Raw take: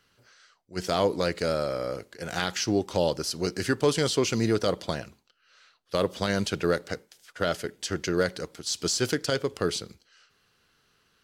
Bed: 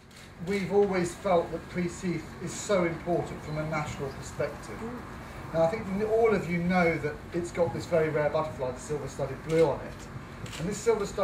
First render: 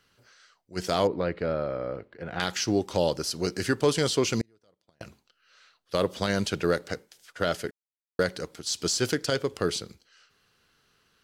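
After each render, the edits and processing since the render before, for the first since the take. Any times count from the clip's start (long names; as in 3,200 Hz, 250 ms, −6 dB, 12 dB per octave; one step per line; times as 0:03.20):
0:01.07–0:02.40: high-frequency loss of the air 450 metres
0:04.41–0:05.01: gate with flip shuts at −20 dBFS, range −39 dB
0:07.71–0:08.19: silence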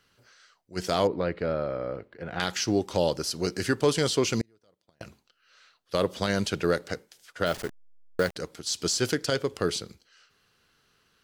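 0:07.46–0:08.36: hold until the input has moved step −36 dBFS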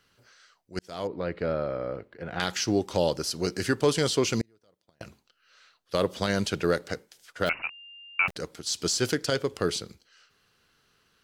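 0:00.79–0:01.44: fade in
0:07.49–0:08.28: voice inversion scrambler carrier 2,800 Hz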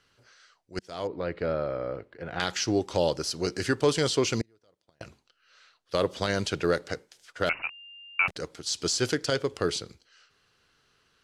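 low-pass filter 9,300 Hz 12 dB per octave
parametric band 200 Hz −5 dB 0.41 octaves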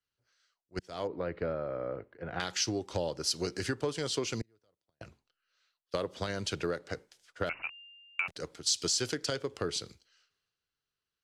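downward compressor 10 to 1, threshold −30 dBFS, peak gain reduction 13 dB
multiband upward and downward expander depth 70%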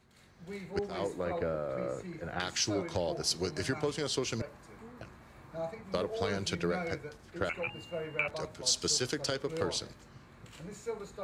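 mix in bed −13 dB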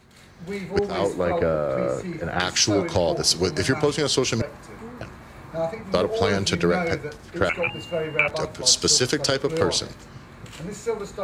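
level +11.5 dB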